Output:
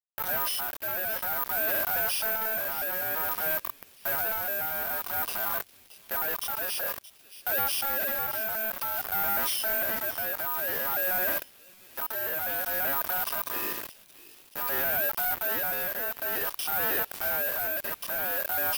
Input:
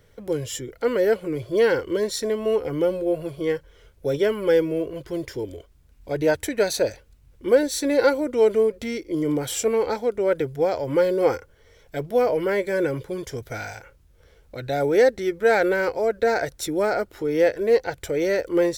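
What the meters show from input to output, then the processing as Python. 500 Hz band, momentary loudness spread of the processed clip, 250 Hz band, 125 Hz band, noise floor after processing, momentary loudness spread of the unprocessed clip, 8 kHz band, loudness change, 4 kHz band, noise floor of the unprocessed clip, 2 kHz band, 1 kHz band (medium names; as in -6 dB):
-17.0 dB, 7 LU, -20.5 dB, -15.5 dB, -55 dBFS, 12 LU, -2.5 dB, -4.5 dB, -1.0 dB, -56 dBFS, -1.0 dB, -2.5 dB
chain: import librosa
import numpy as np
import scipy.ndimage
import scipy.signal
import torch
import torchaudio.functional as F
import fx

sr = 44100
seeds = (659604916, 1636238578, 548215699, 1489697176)

p1 = fx.freq_compress(x, sr, knee_hz=3400.0, ratio=4.0)
p2 = fx.peak_eq(p1, sr, hz=2500.0, db=-14.5, octaves=0.71)
p3 = fx.level_steps(p2, sr, step_db=13)
p4 = fx.transient(p3, sr, attack_db=-9, sustain_db=8)
p5 = fx.rider(p4, sr, range_db=4, speed_s=0.5)
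p6 = fx.quant_companded(p5, sr, bits=2)
p7 = p6 * (1.0 - 0.37 / 2.0 + 0.37 / 2.0 * np.cos(2.0 * np.pi * 0.53 * (np.arange(len(p6)) / sr)))
p8 = p7 + fx.echo_wet_highpass(p7, sr, ms=624, feedback_pct=51, hz=1500.0, wet_db=-14.5, dry=0)
p9 = (np.kron(scipy.signal.resample_poly(p8, 1, 3), np.eye(3)[0]) * 3)[:len(p8)]
p10 = p9 * np.sin(2.0 * np.pi * 1100.0 * np.arange(len(p9)) / sr)
y = p10 * 10.0 ** (-3.0 / 20.0)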